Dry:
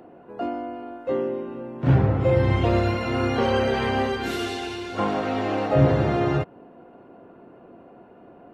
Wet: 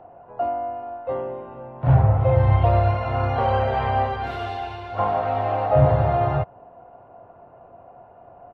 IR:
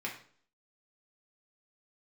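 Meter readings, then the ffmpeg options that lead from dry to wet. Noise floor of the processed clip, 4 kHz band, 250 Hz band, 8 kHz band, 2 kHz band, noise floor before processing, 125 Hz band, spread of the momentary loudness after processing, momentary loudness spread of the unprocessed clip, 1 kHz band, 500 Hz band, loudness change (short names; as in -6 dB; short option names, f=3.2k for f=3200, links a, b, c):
-49 dBFS, -7.5 dB, -7.0 dB, n/a, -3.5 dB, -49 dBFS, +3.5 dB, 14 LU, 13 LU, +5.5 dB, +0.5 dB, +1.5 dB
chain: -af "firequalizer=gain_entry='entry(110,0);entry(200,-15);entry(330,-17);entry(670,2);entry(1600,-9);entry(4100,-15);entry(6700,-26)':delay=0.05:min_phase=1,volume=5.5dB"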